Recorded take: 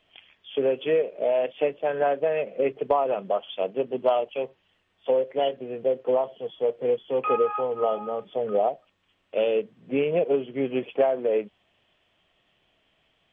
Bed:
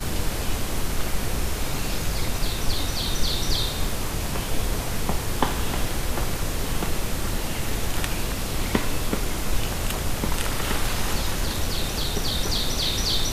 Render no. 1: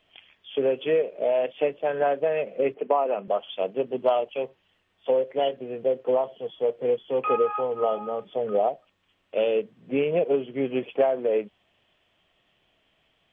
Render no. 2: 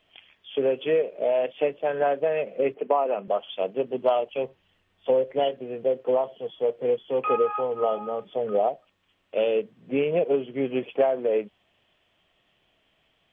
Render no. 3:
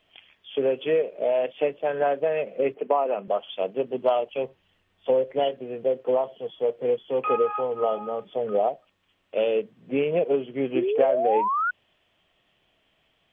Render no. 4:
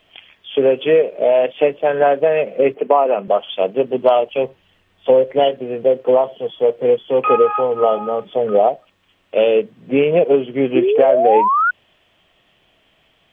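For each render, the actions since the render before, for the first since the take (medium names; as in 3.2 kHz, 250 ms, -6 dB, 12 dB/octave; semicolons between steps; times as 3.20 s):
2.74–3.28 s: elliptic band-pass 200–2800 Hz
4.33–5.44 s: bass shelf 180 Hz +8 dB
10.75–11.71 s: painted sound rise 320–1500 Hz -24 dBFS
trim +9.5 dB; peak limiter -2 dBFS, peak gain reduction 2.5 dB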